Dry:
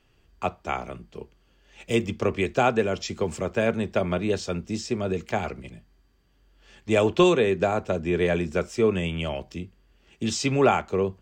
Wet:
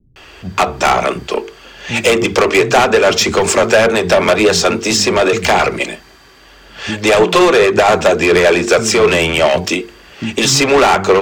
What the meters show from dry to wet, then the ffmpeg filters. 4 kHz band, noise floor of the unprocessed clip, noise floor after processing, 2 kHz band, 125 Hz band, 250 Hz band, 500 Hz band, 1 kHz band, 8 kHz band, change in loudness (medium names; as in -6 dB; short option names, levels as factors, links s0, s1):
+18.5 dB, -63 dBFS, -43 dBFS, +17.5 dB, +6.5 dB, +9.5 dB, +13.0 dB, +15.0 dB, +20.0 dB, +13.0 dB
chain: -filter_complex "[0:a]acrossover=split=390|1600[s0][s1][s2];[s0]acompressor=threshold=0.0316:ratio=4[s3];[s1]acompressor=threshold=0.0501:ratio=4[s4];[s2]acompressor=threshold=0.01:ratio=4[s5];[s3][s4][s5]amix=inputs=3:normalize=0,highshelf=f=7400:g=-5.5,bandreject=f=50:t=h:w=6,bandreject=f=100:t=h:w=6,bandreject=f=150:t=h:w=6,bandreject=f=200:t=h:w=6,bandreject=f=250:t=h:w=6,bandreject=f=300:t=h:w=6,bandreject=f=350:t=h:w=6,bandreject=f=400:t=h:w=6,bandreject=f=450:t=h:w=6,asplit=2[s6][s7];[s7]acompressor=threshold=0.0178:ratio=6,volume=1.06[s8];[s6][s8]amix=inputs=2:normalize=0,bandreject=f=3000:w=28,acrossover=split=210[s9][s10];[s10]adelay=160[s11];[s9][s11]amix=inputs=2:normalize=0,asplit=2[s12][s13];[s13]highpass=f=720:p=1,volume=15.8,asoftclip=type=tanh:threshold=0.335[s14];[s12][s14]amix=inputs=2:normalize=0,lowpass=f=7400:p=1,volume=0.501,aphaser=in_gain=1:out_gain=1:delay=3.7:decay=0.25:speed=1.8:type=triangular,adynamicequalizer=threshold=0.02:dfrequency=5000:dqfactor=0.7:tfrequency=5000:tqfactor=0.7:attack=5:release=100:ratio=0.375:range=2.5:mode=boostabove:tftype=highshelf,volume=2.37"